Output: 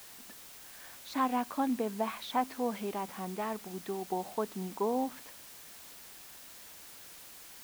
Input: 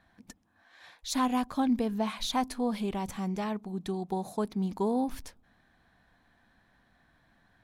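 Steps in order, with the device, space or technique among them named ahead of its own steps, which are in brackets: wax cylinder (BPF 310–2400 Hz; wow and flutter; white noise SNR 14 dB)

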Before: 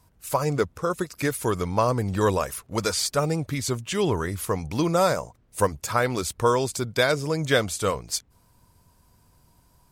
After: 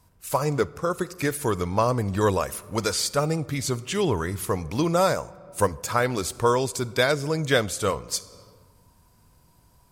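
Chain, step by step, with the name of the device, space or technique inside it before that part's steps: compressed reverb return (on a send at -5 dB: reverb RT60 1.2 s, pre-delay 33 ms + compressor 8:1, threshold -36 dBFS, peak gain reduction 19.5 dB)

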